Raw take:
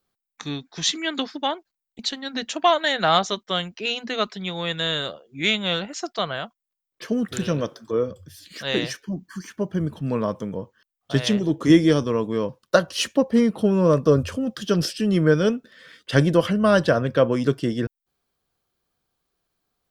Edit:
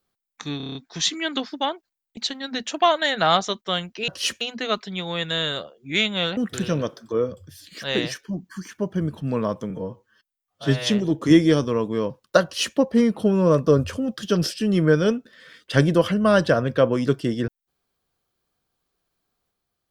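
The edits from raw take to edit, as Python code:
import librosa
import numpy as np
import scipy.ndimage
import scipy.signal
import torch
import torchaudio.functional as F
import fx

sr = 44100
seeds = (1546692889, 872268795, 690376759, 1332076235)

y = fx.edit(x, sr, fx.stutter(start_s=0.57, slice_s=0.03, count=7),
    fx.cut(start_s=5.86, length_s=1.3),
    fx.stretch_span(start_s=10.49, length_s=0.8, factor=1.5),
    fx.duplicate(start_s=12.83, length_s=0.33, to_s=3.9), tone=tone)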